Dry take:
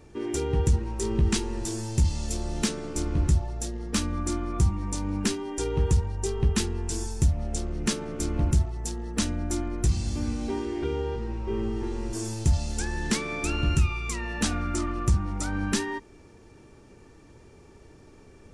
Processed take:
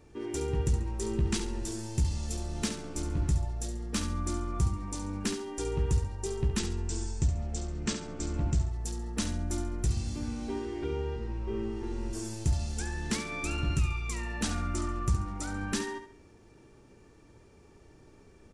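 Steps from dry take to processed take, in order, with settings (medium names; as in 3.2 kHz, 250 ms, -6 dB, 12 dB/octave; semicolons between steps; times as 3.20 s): 6.59–8.66 s: brick-wall FIR low-pass 8.7 kHz; feedback delay 69 ms, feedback 32%, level -9 dB; trim -5.5 dB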